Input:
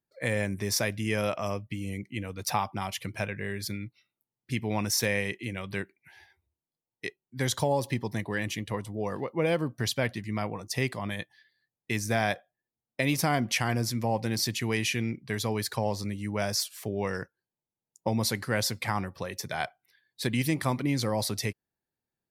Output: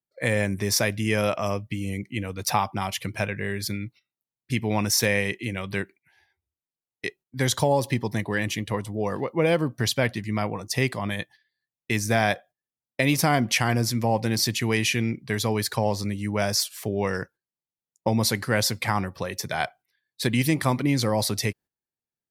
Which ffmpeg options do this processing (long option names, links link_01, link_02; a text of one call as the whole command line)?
ffmpeg -i in.wav -af "agate=range=-13dB:threshold=-51dB:ratio=16:detection=peak,volume=5dB" out.wav